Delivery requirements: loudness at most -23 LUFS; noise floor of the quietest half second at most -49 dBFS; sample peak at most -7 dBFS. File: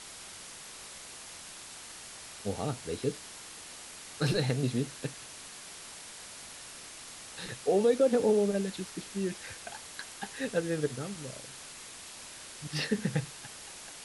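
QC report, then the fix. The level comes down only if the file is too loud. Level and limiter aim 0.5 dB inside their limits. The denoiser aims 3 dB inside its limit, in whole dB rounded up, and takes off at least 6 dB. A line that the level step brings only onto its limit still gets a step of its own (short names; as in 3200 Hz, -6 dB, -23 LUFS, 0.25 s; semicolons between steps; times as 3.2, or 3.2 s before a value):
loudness -34.5 LUFS: OK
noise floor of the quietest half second -47 dBFS: fail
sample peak -15.5 dBFS: OK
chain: denoiser 6 dB, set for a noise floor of -47 dBFS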